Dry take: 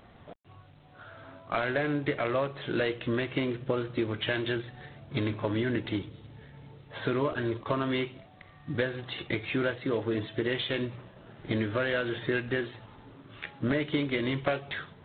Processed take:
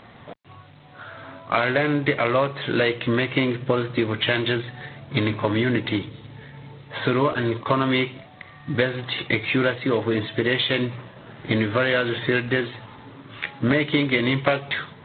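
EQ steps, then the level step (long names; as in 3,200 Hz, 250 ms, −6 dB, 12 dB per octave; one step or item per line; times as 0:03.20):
octave-band graphic EQ 125/250/500/1,000/2,000/4,000 Hz +9/+7/+6/+9/+10/+11 dB
dynamic equaliser 1,700 Hz, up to −4 dB, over −33 dBFS, Q 6.1
−2.0 dB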